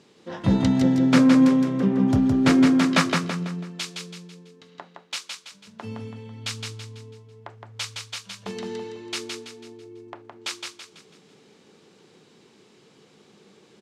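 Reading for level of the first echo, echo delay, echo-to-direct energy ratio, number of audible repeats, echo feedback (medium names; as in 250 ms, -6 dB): -4.5 dB, 165 ms, -3.5 dB, 4, 41%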